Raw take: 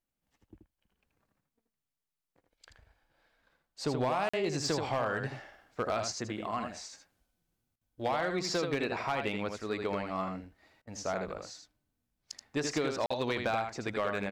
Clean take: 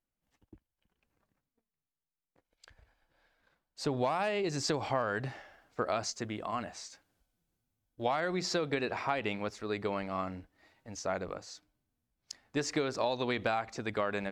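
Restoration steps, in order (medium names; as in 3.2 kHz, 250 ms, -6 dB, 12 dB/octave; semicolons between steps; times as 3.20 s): clip repair -23.5 dBFS; interpolate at 4.29/13.06 s, 45 ms; interpolate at 7.76/10.82 s, 50 ms; inverse comb 80 ms -6 dB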